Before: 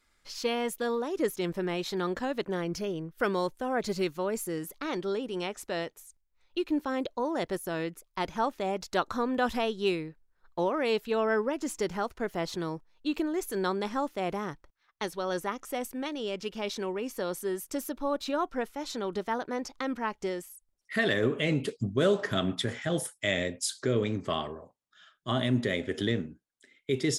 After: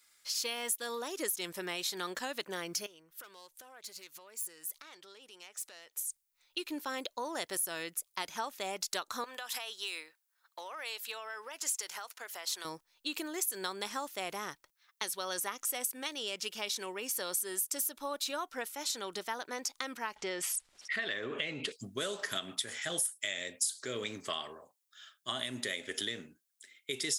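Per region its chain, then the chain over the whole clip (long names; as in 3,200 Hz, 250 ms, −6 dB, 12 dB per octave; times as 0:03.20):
0:02.86–0:05.97: phase distortion by the signal itself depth 0.075 ms + parametric band 190 Hz −8.5 dB 2.3 octaves + downward compressor 4 to 1, threshold −50 dBFS
0:09.24–0:12.65: high-pass filter 680 Hz + downward compressor 12 to 1, threshold −35 dBFS
0:20.16–0:21.72: low-pass filter 3,400 Hz + envelope flattener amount 50%
whole clip: spectral tilt +4.5 dB per octave; downward compressor 12 to 1, threshold −29 dBFS; dynamic equaliser 9,200 Hz, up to +4 dB, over −48 dBFS, Q 1.5; level −3 dB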